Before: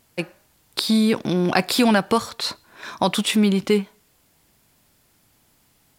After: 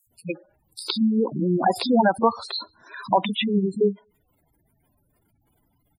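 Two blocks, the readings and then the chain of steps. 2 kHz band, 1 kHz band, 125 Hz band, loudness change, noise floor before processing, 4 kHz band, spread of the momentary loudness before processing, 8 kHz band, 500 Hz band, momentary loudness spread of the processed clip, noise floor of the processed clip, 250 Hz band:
-5.5 dB, +2.5 dB, -3.5 dB, -2.5 dB, -62 dBFS, -5.5 dB, 15 LU, -13.0 dB, -0.5 dB, 16 LU, -68 dBFS, -3.5 dB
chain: three bands offset in time highs, lows, mids 70/110 ms, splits 200/5700 Hz; dynamic EQ 830 Hz, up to +5 dB, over -33 dBFS, Q 2.3; spectral gate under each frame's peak -10 dB strong

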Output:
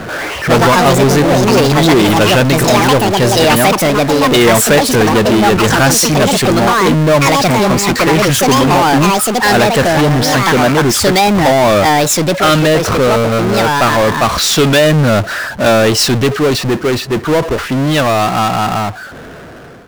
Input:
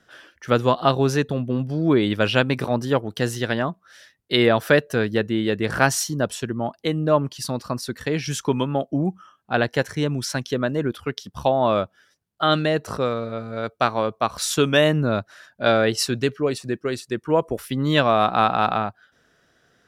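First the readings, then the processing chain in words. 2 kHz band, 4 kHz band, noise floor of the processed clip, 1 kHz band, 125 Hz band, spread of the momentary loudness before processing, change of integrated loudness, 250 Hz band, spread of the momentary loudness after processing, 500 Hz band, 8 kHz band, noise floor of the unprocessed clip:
+12.5 dB, +13.5 dB, -28 dBFS, +13.0 dB, +12.0 dB, 9 LU, +12.0 dB, +12.0 dB, 5 LU, +11.0 dB, +16.5 dB, -65 dBFS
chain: ending faded out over 4.54 s; low-pass opened by the level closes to 990 Hz, open at -17.5 dBFS; echoes that change speed 0.122 s, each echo +5 st, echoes 2; power-law curve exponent 0.35

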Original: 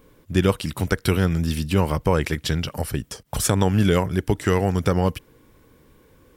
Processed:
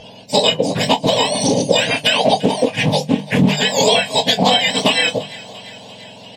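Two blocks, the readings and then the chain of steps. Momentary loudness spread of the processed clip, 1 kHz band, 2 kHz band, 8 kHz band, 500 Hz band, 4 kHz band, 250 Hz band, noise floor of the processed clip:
14 LU, +10.0 dB, +11.0 dB, +8.0 dB, +7.5 dB, +18.0 dB, +4.0 dB, -39 dBFS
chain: spectrum mirrored in octaves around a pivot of 1200 Hz; LPF 2800 Hz 12 dB/oct; bell 140 Hz -11.5 dB 1.5 oct; notches 50/100/150/200 Hz; compressor 6:1, threshold -36 dBFS, peak gain reduction 15.5 dB; fixed phaser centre 350 Hz, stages 6; doubler 26 ms -11 dB; thinning echo 0.343 s, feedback 66%, level -19 dB; maximiser +27.5 dB; Doppler distortion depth 0.23 ms

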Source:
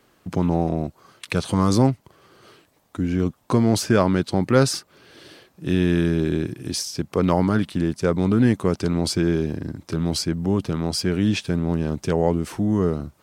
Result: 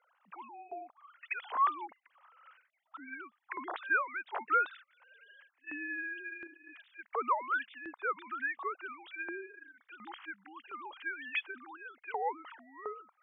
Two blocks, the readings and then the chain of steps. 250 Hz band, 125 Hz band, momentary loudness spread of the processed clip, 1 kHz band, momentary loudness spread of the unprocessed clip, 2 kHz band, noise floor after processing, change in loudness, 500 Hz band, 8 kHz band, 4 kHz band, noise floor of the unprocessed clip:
-31.5 dB, under -40 dB, 20 LU, -4.5 dB, 9 LU, -2.0 dB, -79 dBFS, -14.5 dB, -21.5 dB, under -40 dB, -22.0 dB, -62 dBFS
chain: sine-wave speech; LFO high-pass saw up 1.4 Hz 880–2100 Hz; air absorption 120 m; gain -8.5 dB

